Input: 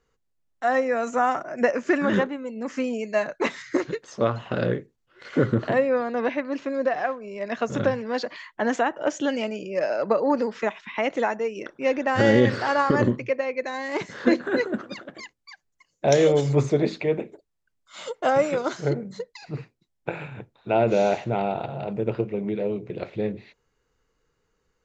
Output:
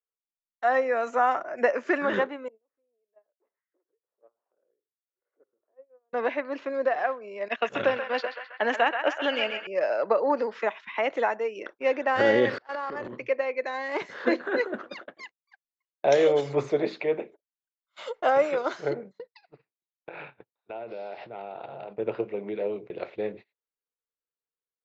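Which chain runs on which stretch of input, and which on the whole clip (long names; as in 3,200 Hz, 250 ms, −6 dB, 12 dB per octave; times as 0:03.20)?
0:02.48–0:06.13: four-pole ladder band-pass 520 Hz, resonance 35% + downward compressor 2 to 1, threshold −52 dBFS
0:07.48–0:09.67: noise gate −31 dBFS, range −15 dB + parametric band 2,700 Hz +10 dB 0.76 octaves + feedback echo with a band-pass in the loop 131 ms, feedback 69%, band-pass 1,600 Hz, level −5.5 dB
0:12.58–0:13.17: transient designer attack −6 dB, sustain +12 dB + noise gate −24 dBFS, range −35 dB + downward compressor 8 to 1, threshold −27 dBFS
0:19.19–0:21.97: downward compressor 8 to 1, threshold −32 dBFS + bad sample-rate conversion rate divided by 4×, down none, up filtered
whole clip: three-way crossover with the lows and the highs turned down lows −16 dB, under 350 Hz, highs −12 dB, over 5,500 Hz; noise gate −42 dBFS, range −28 dB; high-shelf EQ 4,500 Hz −6.5 dB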